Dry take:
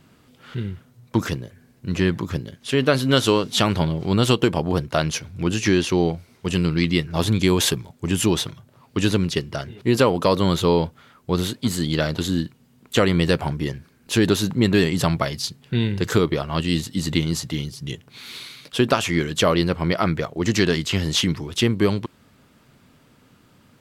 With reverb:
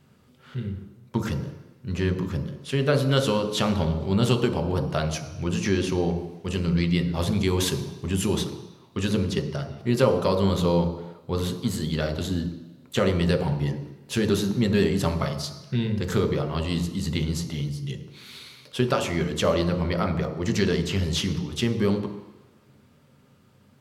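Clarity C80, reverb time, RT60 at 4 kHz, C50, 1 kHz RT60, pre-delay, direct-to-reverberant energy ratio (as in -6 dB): 10.5 dB, 1.1 s, 1.3 s, 8.5 dB, 1.2 s, 3 ms, 4.0 dB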